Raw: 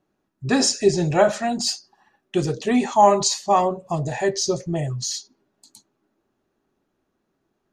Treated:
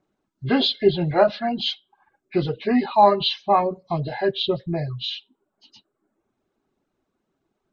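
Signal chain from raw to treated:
hearing-aid frequency compression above 1,400 Hz 1.5 to 1
reverb reduction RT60 0.68 s

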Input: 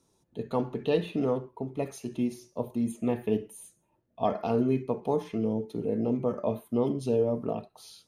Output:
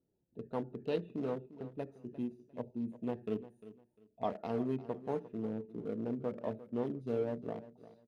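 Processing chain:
adaptive Wiener filter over 41 samples
low-shelf EQ 150 Hz −4.5 dB
on a send: repeating echo 350 ms, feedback 24%, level −16 dB
on the sum: level −7.5 dB

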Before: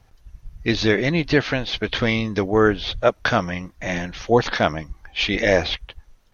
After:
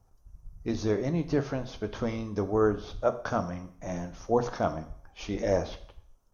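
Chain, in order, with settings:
flat-topped bell 2,700 Hz −14.5 dB
dense smooth reverb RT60 0.56 s, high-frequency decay 1×, DRR 8.5 dB
level −8.5 dB

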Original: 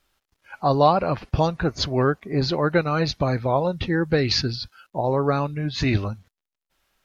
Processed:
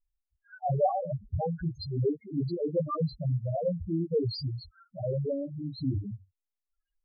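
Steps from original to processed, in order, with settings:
chorus effect 2.7 Hz, depth 2.6 ms
spectral peaks only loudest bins 2

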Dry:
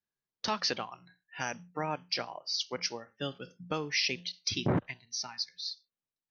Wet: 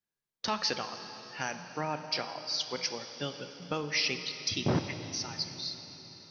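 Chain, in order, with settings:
dense smooth reverb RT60 4.2 s, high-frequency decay 1×, DRR 7.5 dB

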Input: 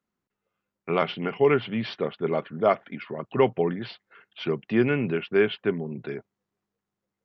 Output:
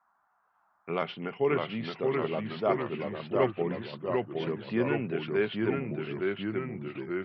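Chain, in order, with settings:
noise in a band 700–1,500 Hz −65 dBFS
delay with pitch and tempo change per echo 547 ms, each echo −1 semitone, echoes 3
level −7 dB

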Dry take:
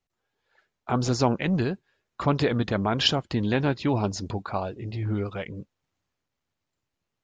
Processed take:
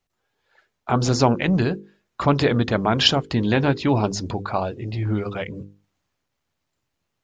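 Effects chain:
mains-hum notches 50/100/150/200/250/300/350/400/450/500 Hz
level +5.5 dB

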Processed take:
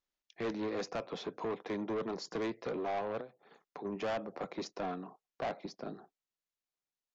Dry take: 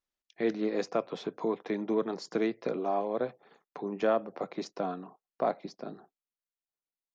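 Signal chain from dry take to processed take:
0:03.20–0:03.85: downward compressor 16 to 1, threshold −41 dBFS, peak gain reduction 16.5 dB
soft clipping −31.5 dBFS, distortion −7 dB
downsampling to 16,000 Hz

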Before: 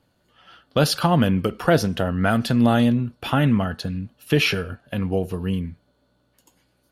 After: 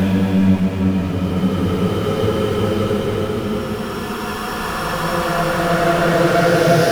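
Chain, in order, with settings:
power curve on the samples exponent 0.5
extreme stretch with random phases 16×, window 0.25 s, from 0:01.31
level −2 dB

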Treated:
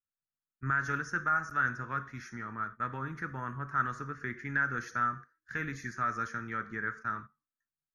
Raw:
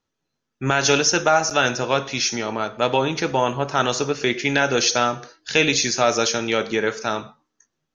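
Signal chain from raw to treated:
noise gate −31 dBFS, range −13 dB
drawn EQ curve 100 Hz 0 dB, 240 Hz −7 dB, 570 Hz −22 dB, 840 Hz −19 dB, 1,200 Hz +1 dB, 1,800 Hz +1 dB, 2,700 Hz −27 dB, 4,000 Hz −29 dB, 6,500 Hz −23 dB, 11,000 Hz +2 dB
level −7.5 dB

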